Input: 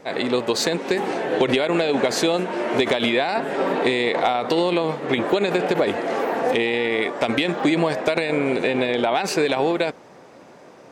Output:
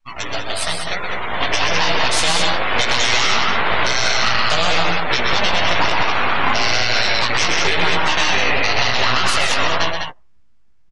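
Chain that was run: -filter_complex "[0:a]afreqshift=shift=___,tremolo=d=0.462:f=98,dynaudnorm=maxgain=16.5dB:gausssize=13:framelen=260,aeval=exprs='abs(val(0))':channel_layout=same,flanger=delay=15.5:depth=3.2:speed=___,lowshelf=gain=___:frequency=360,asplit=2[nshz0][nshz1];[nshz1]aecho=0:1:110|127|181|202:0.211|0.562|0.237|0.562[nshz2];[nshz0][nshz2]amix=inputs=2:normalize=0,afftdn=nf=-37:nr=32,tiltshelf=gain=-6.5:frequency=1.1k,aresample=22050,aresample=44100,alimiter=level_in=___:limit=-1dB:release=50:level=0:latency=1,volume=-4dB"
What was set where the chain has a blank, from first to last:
-100, 0.99, -5.5, 11.5dB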